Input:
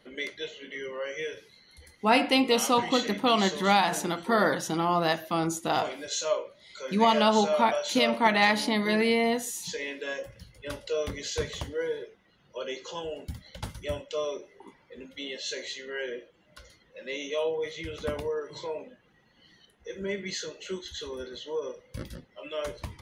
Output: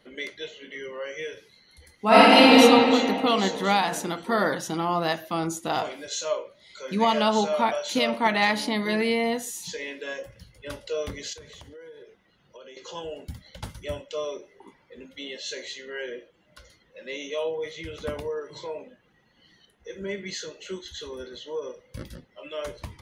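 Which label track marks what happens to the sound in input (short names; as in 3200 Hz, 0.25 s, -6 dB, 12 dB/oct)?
2.050000	2.570000	reverb throw, RT60 2.6 s, DRR -10 dB
11.330000	12.770000	compressor, threshold -43 dBFS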